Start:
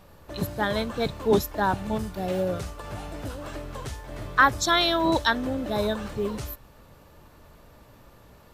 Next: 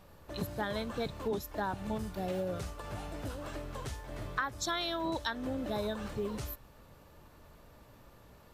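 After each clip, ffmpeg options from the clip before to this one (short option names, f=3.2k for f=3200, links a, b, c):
-af "acompressor=threshold=-26dB:ratio=6,volume=-5dB"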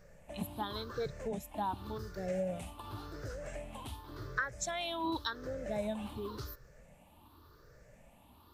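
-af "afftfilt=real='re*pow(10,15/40*sin(2*PI*(0.55*log(max(b,1)*sr/1024/100)/log(2)-(0.9)*(pts-256)/sr)))':imag='im*pow(10,15/40*sin(2*PI*(0.55*log(max(b,1)*sr/1024/100)/log(2)-(0.9)*(pts-256)/sr)))':win_size=1024:overlap=0.75,volume=-5.5dB"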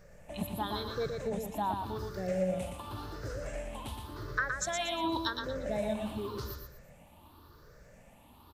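-af "aecho=1:1:118|236|354|472:0.562|0.163|0.0473|0.0137,volume=2.5dB"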